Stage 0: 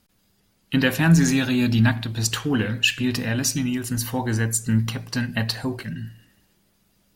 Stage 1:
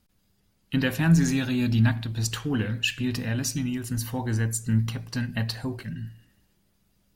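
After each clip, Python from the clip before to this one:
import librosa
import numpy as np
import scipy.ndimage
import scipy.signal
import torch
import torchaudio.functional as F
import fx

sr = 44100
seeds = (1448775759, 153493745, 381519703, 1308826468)

y = fx.low_shelf(x, sr, hz=140.0, db=8.0)
y = y * librosa.db_to_amplitude(-6.5)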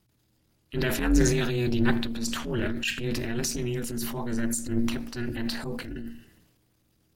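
y = x * np.sin(2.0 * np.pi * 120.0 * np.arange(len(x)) / sr)
y = fx.transient(y, sr, attack_db=-8, sustain_db=7)
y = y * librosa.db_to_amplitude(2.0)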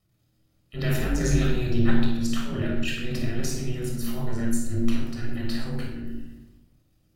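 y = fx.room_shoebox(x, sr, seeds[0], volume_m3=3000.0, walls='furnished', distance_m=6.3)
y = y * librosa.db_to_amplitude(-7.0)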